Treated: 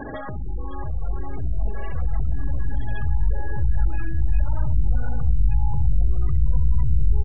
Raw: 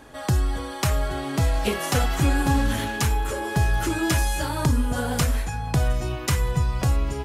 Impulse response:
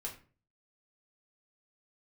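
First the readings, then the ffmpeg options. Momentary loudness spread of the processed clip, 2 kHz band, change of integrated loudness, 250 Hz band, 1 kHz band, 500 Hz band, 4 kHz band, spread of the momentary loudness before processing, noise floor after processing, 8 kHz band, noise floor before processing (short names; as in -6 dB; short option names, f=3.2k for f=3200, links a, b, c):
9 LU, -12.5 dB, -2.0 dB, -11.0 dB, -11.0 dB, -11.5 dB, under -25 dB, 4 LU, -28 dBFS, under -40 dB, -34 dBFS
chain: -filter_complex "[0:a]aeval=exprs='(tanh(35.5*val(0)+0.45)-tanh(0.45))/35.5':c=same,aecho=1:1:70|150.5|243.1|349.5|472:0.631|0.398|0.251|0.158|0.1,asplit=2[a][b];[b]alimiter=level_in=4.5dB:limit=-24dB:level=0:latency=1:release=34,volume=-4.5dB,volume=3dB[c];[a][c]amix=inputs=2:normalize=0,equalizer=f=250:w=0.99:g=2,acompressor=threshold=-38dB:ratio=16,asubboost=boost=11:cutoff=88,aresample=8000,aresample=44100,afftfilt=real='re*gte(hypot(re,im),0.0126)':imag='im*gte(hypot(re,im),0.0126)':win_size=1024:overlap=0.75,volume=9dB"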